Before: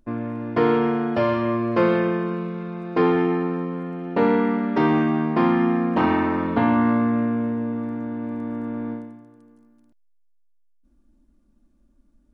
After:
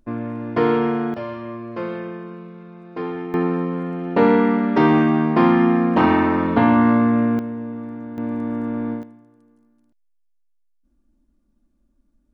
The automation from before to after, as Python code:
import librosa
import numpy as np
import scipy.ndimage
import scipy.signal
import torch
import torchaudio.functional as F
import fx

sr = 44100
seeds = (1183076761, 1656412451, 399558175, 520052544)

y = fx.gain(x, sr, db=fx.steps((0.0, 1.0), (1.14, -9.0), (3.34, 4.0), (7.39, -3.5), (8.18, 4.0), (9.03, -4.0)))